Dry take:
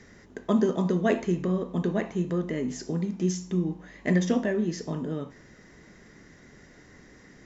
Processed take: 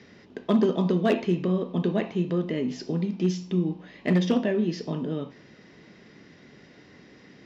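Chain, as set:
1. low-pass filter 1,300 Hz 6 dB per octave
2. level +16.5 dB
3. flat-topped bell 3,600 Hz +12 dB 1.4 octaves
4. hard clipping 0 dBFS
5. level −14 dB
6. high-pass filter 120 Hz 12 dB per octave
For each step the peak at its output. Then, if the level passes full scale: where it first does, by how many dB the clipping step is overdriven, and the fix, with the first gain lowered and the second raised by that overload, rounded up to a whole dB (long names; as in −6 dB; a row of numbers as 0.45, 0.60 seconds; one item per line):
−12.0, +4.5, +4.5, 0.0, −14.0, −10.5 dBFS
step 2, 4.5 dB
step 2 +11.5 dB, step 5 −9 dB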